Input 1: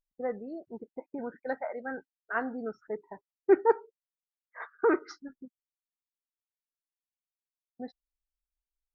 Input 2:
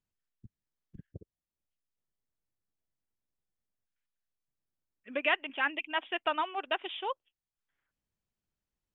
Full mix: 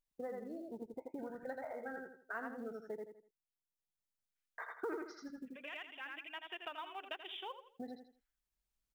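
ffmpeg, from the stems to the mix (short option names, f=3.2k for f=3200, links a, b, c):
-filter_complex "[0:a]volume=-1dB,asplit=3[a][b][c];[a]atrim=end=2.98,asetpts=PTS-STARTPTS,afade=t=out:st=2.976:d=0.004:c=hsin[d];[b]atrim=start=2.98:end=4.58,asetpts=PTS-STARTPTS,volume=0[e];[c]atrim=start=4.58,asetpts=PTS-STARTPTS,afade=t=in:d=0.004:c=hsin[f];[d][e][f]concat=n=3:v=0:a=1,asplit=3[g][h][i];[h]volume=-3.5dB[j];[1:a]highshelf=f=2.2k:g=7.5,bandreject=f=77.46:t=h:w=4,bandreject=f=154.92:t=h:w=4,bandreject=f=232.38:t=h:w=4,bandreject=f=309.84:t=h:w=4,bandreject=f=387.3:t=h:w=4,bandreject=f=464.76:t=h:w=4,bandreject=f=542.22:t=h:w=4,acontrast=57,adelay=400,volume=-13.5dB,asplit=2[k][l];[l]volume=-12dB[m];[i]apad=whole_len=412202[n];[k][n]sidechaincompress=threshold=-47dB:ratio=5:attack=6.4:release=1160[o];[j][m]amix=inputs=2:normalize=0,aecho=0:1:82|164|246|328:1|0.26|0.0676|0.0176[p];[g][o][p]amix=inputs=3:normalize=0,acrusher=bits=8:mode=log:mix=0:aa=0.000001,acompressor=threshold=-44dB:ratio=3"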